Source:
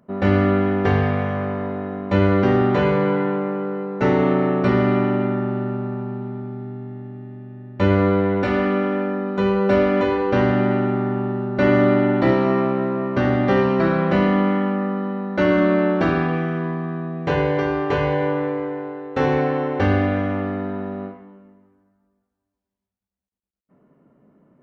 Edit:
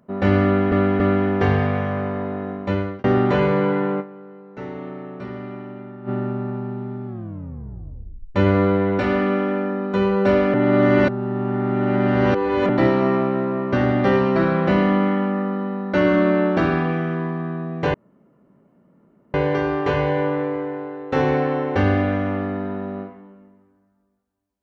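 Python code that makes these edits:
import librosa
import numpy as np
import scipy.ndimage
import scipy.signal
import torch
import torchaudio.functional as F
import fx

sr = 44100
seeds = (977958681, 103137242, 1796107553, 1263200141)

y = fx.edit(x, sr, fx.repeat(start_s=0.44, length_s=0.28, count=3),
    fx.fade_out_span(start_s=1.94, length_s=0.54),
    fx.fade_down_up(start_s=3.44, length_s=2.09, db=-15.0, fade_s=0.19, curve='exp'),
    fx.tape_stop(start_s=6.5, length_s=1.29),
    fx.reverse_span(start_s=9.98, length_s=2.15),
    fx.insert_room_tone(at_s=17.38, length_s=1.4), tone=tone)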